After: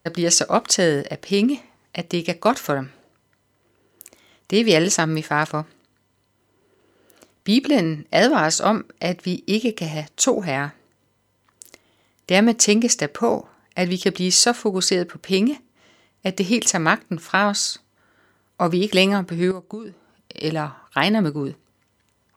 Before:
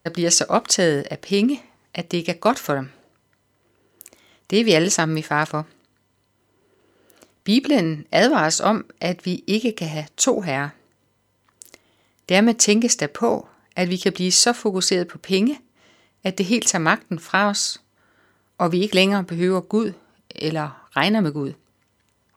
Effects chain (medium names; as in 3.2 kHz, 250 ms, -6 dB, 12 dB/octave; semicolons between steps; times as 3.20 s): 19.51–20.44 s: compression 16:1, threshold -29 dBFS, peak gain reduction 15.5 dB